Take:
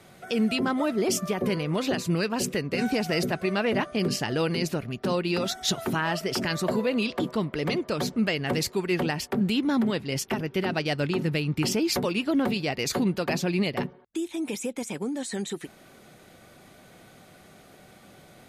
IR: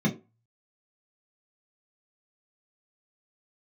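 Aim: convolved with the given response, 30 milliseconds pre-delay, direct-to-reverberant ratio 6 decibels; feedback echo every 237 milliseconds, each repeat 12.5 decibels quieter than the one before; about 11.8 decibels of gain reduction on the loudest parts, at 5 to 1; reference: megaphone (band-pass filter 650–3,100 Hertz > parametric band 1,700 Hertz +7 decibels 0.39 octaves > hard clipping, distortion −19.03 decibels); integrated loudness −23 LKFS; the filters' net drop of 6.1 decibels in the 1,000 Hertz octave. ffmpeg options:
-filter_complex "[0:a]equalizer=frequency=1000:width_type=o:gain=-7.5,acompressor=threshold=-35dB:ratio=5,aecho=1:1:237|474|711:0.237|0.0569|0.0137,asplit=2[link_01][link_02];[1:a]atrim=start_sample=2205,adelay=30[link_03];[link_02][link_03]afir=irnorm=-1:irlink=0,volume=-15.5dB[link_04];[link_01][link_04]amix=inputs=2:normalize=0,highpass=650,lowpass=3100,equalizer=frequency=1700:width_type=o:width=0.39:gain=7,asoftclip=type=hard:threshold=-33dB,volume=19dB"

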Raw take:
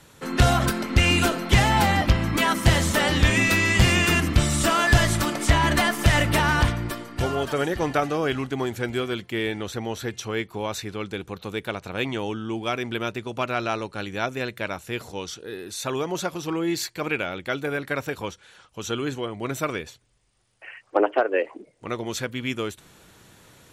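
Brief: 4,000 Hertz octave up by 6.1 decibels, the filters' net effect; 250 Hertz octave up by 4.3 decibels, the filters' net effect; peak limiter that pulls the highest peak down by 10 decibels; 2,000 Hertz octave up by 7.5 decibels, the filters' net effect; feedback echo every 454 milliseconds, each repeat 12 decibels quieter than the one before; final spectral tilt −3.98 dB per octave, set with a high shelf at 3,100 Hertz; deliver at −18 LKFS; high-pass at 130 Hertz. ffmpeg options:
ffmpeg -i in.wav -af "highpass=130,equalizer=frequency=250:width_type=o:gain=6,equalizer=frequency=2000:width_type=o:gain=8.5,highshelf=frequency=3100:gain=-4,equalizer=frequency=4000:width_type=o:gain=7.5,alimiter=limit=-11.5dB:level=0:latency=1,aecho=1:1:454|908|1362:0.251|0.0628|0.0157,volume=5dB" out.wav

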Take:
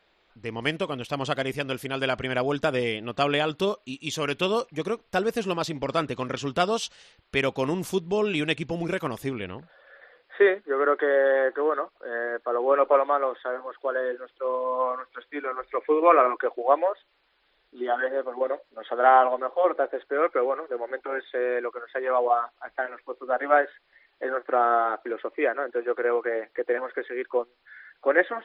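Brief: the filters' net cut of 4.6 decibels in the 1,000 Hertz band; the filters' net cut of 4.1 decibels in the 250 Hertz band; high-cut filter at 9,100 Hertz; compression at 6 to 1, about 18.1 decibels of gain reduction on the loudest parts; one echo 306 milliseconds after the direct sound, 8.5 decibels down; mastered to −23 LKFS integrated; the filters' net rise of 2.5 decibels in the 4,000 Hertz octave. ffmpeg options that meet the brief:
ffmpeg -i in.wav -af "lowpass=9100,equalizer=frequency=250:width_type=o:gain=-5.5,equalizer=frequency=1000:width_type=o:gain=-6.5,equalizer=frequency=4000:width_type=o:gain=4,acompressor=threshold=-37dB:ratio=6,aecho=1:1:306:0.376,volume=17.5dB" out.wav

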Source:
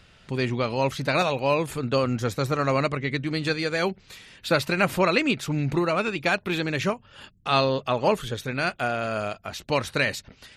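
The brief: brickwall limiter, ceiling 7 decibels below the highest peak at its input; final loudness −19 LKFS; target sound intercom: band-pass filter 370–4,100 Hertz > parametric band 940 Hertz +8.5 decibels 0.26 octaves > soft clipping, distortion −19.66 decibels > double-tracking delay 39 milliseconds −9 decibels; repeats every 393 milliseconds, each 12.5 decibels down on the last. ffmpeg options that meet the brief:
ffmpeg -i in.wav -filter_complex "[0:a]alimiter=limit=-14.5dB:level=0:latency=1,highpass=370,lowpass=4100,equalizer=frequency=940:width_type=o:width=0.26:gain=8.5,aecho=1:1:393|786|1179:0.237|0.0569|0.0137,asoftclip=threshold=-15dB,asplit=2[link_01][link_02];[link_02]adelay=39,volume=-9dB[link_03];[link_01][link_03]amix=inputs=2:normalize=0,volume=9dB" out.wav

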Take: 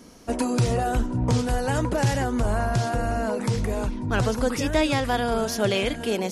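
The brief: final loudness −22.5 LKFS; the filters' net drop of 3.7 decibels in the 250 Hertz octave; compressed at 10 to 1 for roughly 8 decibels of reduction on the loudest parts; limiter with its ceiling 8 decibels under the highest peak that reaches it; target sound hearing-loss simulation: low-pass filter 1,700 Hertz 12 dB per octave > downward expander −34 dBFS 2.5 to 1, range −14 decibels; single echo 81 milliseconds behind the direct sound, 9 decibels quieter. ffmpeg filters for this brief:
ffmpeg -i in.wav -af "equalizer=frequency=250:width_type=o:gain=-4.5,acompressor=threshold=-26dB:ratio=10,alimiter=limit=-24dB:level=0:latency=1,lowpass=1700,aecho=1:1:81:0.355,agate=range=-14dB:threshold=-34dB:ratio=2.5,volume=11dB" out.wav

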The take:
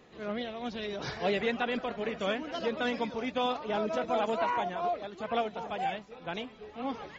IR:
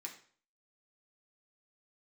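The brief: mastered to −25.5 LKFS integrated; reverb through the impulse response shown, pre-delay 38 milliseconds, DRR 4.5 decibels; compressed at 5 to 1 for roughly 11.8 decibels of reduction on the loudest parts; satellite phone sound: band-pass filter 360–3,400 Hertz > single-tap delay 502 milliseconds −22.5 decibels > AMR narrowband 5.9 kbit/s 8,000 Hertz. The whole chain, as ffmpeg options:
-filter_complex "[0:a]acompressor=threshold=-39dB:ratio=5,asplit=2[link_01][link_02];[1:a]atrim=start_sample=2205,adelay=38[link_03];[link_02][link_03]afir=irnorm=-1:irlink=0,volume=-1.5dB[link_04];[link_01][link_04]amix=inputs=2:normalize=0,highpass=360,lowpass=3400,aecho=1:1:502:0.075,volume=19.5dB" -ar 8000 -c:a libopencore_amrnb -b:a 5900

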